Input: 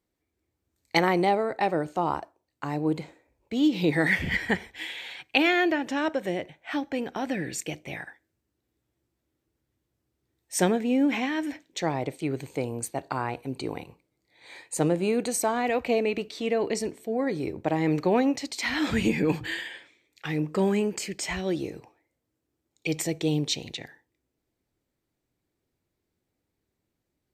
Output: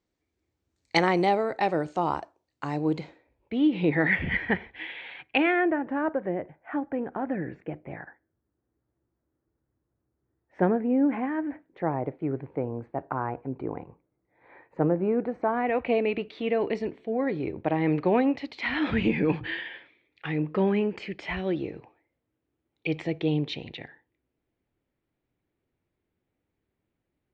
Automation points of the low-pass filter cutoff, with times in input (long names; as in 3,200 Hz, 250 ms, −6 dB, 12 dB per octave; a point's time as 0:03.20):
low-pass filter 24 dB per octave
0:02.84 7,300 Hz
0:03.61 2,800 Hz
0:05.33 2,800 Hz
0:05.74 1,600 Hz
0:15.37 1,600 Hz
0:15.99 3,200 Hz